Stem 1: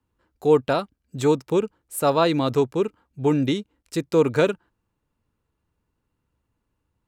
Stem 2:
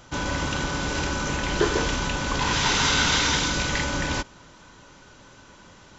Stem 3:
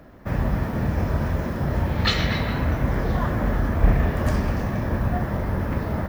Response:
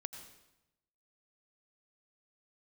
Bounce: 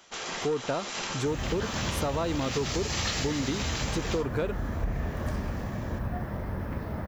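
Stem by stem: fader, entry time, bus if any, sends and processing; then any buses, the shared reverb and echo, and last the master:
−0.5 dB, 0.00 s, bus A, no send, high-shelf EQ 4,700 Hz −9 dB
+2.5 dB, 0.00 s, bus A, no send, gate on every frequency bin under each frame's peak −10 dB weak; tuned comb filter 89 Hz, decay 0.17 s, harmonics all, mix 70%
−8.5 dB, 1.00 s, no bus, no send, no processing
bus A: 0.0 dB, soft clipping −10.5 dBFS, distortion −21 dB; downward compressor 1.5 to 1, threshold −30 dBFS, peak gain reduction 5.5 dB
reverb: not used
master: downward compressor, threshold −25 dBFS, peak gain reduction 6.5 dB

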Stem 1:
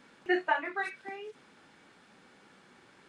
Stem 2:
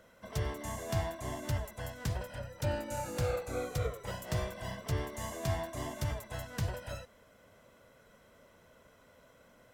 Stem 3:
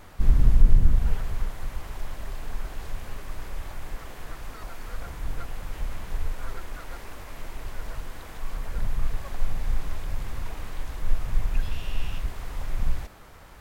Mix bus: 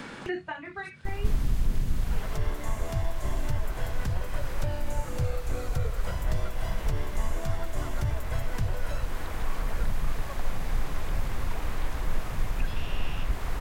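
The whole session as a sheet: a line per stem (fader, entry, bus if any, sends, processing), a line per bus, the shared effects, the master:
−2.0 dB, 0.00 s, no send, no processing
−1.0 dB, 2.00 s, no send, no processing
−2.0 dB, 1.05 s, no send, no processing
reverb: not used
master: multiband upward and downward compressor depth 100%

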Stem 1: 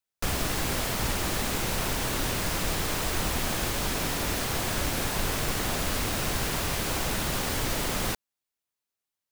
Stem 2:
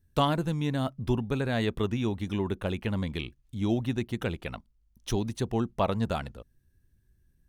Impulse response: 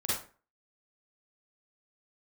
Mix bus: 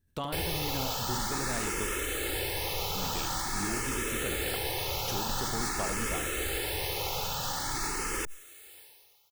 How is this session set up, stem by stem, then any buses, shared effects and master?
−1.5 dB, 0.10 s, no send, no echo send, comb filter 2.3 ms, depth 64%; frequency shifter mixed with the dry sound +0.47 Hz
−2.0 dB, 0.00 s, muted 0:01.86–0:02.95, no send, echo send −10 dB, downward compressor 5 to 1, threshold −30 dBFS, peak gain reduction 10.5 dB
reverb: not used
echo: single-tap delay 72 ms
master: low-shelf EQ 190 Hz −6.5 dB; level that may fall only so fast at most 33 dB per second

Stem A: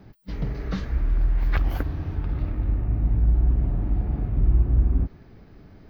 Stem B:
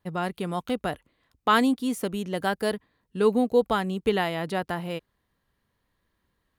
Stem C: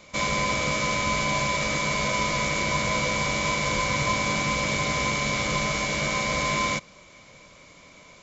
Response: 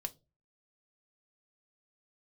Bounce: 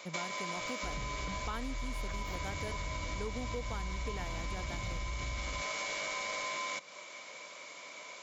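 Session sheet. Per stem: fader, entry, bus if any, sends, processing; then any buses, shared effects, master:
−3.5 dB, 0.55 s, bus A, no send, no processing
−9.0 dB, 0.00 s, no bus, no send, no processing
+1.0 dB, 0.00 s, bus A, send −9.5 dB, high-pass filter 500 Hz 12 dB per octave; automatic ducking −18 dB, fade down 0.30 s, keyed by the second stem
bus A: 0.0 dB, brickwall limiter −23.5 dBFS, peak gain reduction 11.5 dB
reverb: on, pre-delay 3 ms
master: downward compressor 6 to 1, threshold −35 dBFS, peak gain reduction 12.5 dB

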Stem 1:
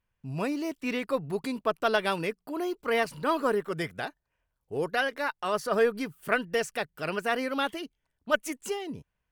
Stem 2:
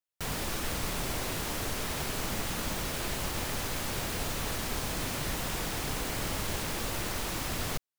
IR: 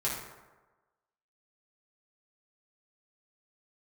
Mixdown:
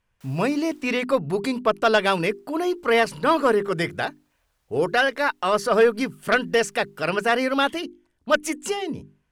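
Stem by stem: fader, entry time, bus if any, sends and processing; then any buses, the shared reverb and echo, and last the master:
−0.5 dB, 0.00 s, no send, low-pass filter 11,000 Hz 12 dB per octave; mains-hum notches 50/100/150/200/250/300/350/400 Hz; sine wavefolder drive 5 dB, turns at −9 dBFS
−15.0 dB, 0.00 s, muted 0:00.87–0:02.25, no send, high-pass filter 540 Hz; automatic ducking −24 dB, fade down 1.60 s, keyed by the first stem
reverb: not used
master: no processing

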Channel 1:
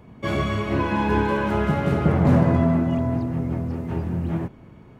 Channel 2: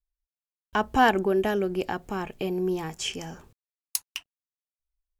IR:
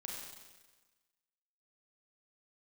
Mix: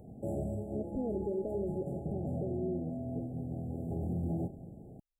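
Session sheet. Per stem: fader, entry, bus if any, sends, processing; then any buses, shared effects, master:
−4.5 dB, 0.00 s, send −15 dB, speech leveller within 3 dB 0.5 s; automatic ducking −13 dB, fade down 0.55 s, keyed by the second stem
−6.0 dB, 0.00 s, no send, Butterworth low-pass 630 Hz 96 dB per octave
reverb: on, RT60 1.3 s, pre-delay 31 ms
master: linear-phase brick-wall band-stop 840–7,100 Hz; low-shelf EQ 470 Hz −3 dB; brickwall limiter −27 dBFS, peak gain reduction 8 dB

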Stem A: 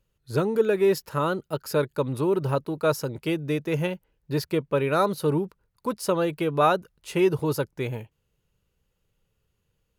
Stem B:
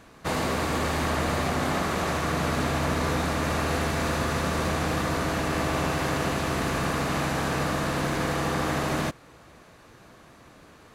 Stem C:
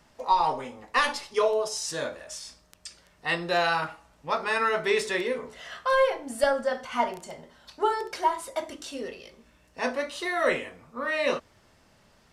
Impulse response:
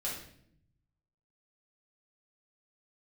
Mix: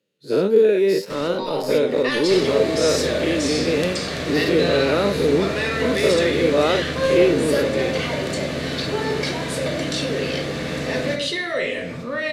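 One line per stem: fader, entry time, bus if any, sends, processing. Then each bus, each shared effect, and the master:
−8.5 dB, 0.00 s, no send, every bin's largest magnitude spread in time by 120 ms; high-pass filter 210 Hz 24 dB per octave; low-shelf EQ 420 Hz +7.5 dB
−5.5 dB, 2.05 s, send −4 dB, downward compressor 1.5 to 1, threshold −34 dBFS, peak gain reduction 4.5 dB
−12.0 dB, 1.10 s, send −6 dB, envelope flattener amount 70%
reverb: on, RT60 0.65 s, pre-delay 3 ms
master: graphic EQ with 10 bands 125 Hz +10 dB, 250 Hz +7 dB, 500 Hz +11 dB, 1,000 Hz −4 dB, 2,000 Hz +9 dB, 4,000 Hz +12 dB, 8,000 Hz +4 dB; flanger 1.8 Hz, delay 9.2 ms, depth 3.2 ms, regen +77%

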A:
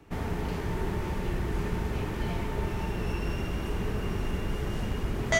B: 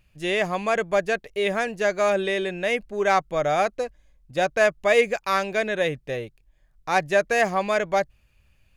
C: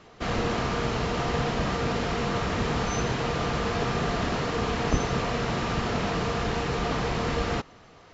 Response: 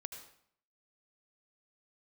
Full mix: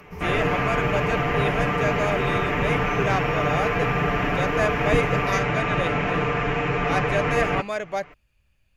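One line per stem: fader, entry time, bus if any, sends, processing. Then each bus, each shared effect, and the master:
−11.0 dB, 0.00 s, send −3.5 dB, EQ curve with evenly spaced ripples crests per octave 0.81, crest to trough 14 dB; upward compression, threshold −39 dBFS
−5.5 dB, 0.00 s, no send, no processing
+1.0 dB, 0.00 s, no send, high shelf with overshoot 3,200 Hz −9.5 dB, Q 3; comb filter 6.8 ms, depth 77%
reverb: on, RT60 0.60 s, pre-delay 71 ms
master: no processing

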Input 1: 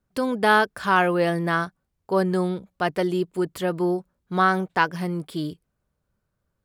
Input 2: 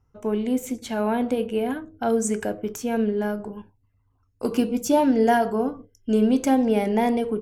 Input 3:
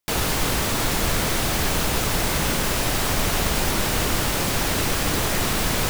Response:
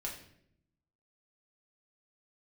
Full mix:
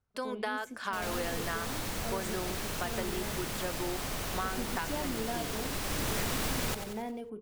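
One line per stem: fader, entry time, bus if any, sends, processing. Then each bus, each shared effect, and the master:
−7.5 dB, 0.00 s, send −20 dB, no echo send, meter weighting curve A; downward compressor, threshold −22 dBFS, peak gain reduction 9.5 dB
−17.0 dB, 0.00 s, no send, no echo send, no processing
−2.5 dB, 0.85 s, no send, echo send −12 dB, automatic ducking −23 dB, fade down 1.55 s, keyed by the first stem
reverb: on, RT60 0.70 s, pre-delay 5 ms
echo: repeating echo 92 ms, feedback 43%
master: downward compressor, threshold −29 dBFS, peak gain reduction 9 dB

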